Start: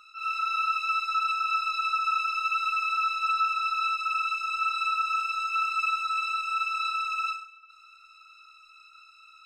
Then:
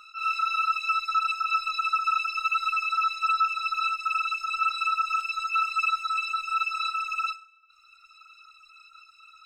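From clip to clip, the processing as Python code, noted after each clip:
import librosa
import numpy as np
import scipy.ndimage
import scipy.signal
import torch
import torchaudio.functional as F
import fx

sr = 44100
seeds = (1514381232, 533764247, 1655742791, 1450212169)

y = fx.dereverb_blind(x, sr, rt60_s=1.4)
y = y * 10.0 ** (4.0 / 20.0)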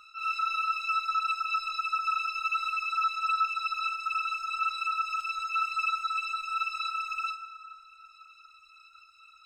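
y = fx.peak_eq(x, sr, hz=73.0, db=5.5, octaves=2.8)
y = fx.rev_plate(y, sr, seeds[0], rt60_s=3.5, hf_ratio=0.55, predelay_ms=0, drr_db=8.0)
y = y * 10.0 ** (-4.0 / 20.0)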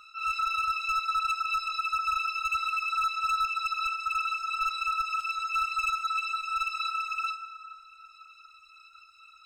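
y = np.clip(10.0 ** (25.0 / 20.0) * x, -1.0, 1.0) / 10.0 ** (25.0 / 20.0)
y = y * 10.0 ** (1.5 / 20.0)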